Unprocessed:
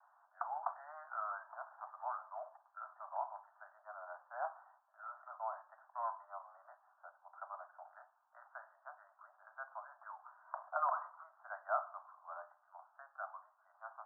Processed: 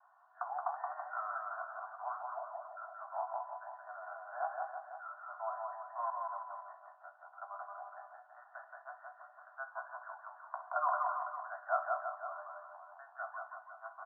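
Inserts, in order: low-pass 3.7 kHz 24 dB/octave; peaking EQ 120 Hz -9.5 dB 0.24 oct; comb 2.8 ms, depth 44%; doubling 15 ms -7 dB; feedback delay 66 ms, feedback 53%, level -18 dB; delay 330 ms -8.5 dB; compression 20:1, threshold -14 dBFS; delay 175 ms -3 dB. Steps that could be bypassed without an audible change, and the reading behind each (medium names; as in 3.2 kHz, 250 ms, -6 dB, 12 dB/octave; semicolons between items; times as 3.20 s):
low-pass 3.7 kHz: input has nothing above 1.8 kHz; peaking EQ 120 Hz: input has nothing below 510 Hz; compression, threshold -14 dBFS: peak at its input -20.0 dBFS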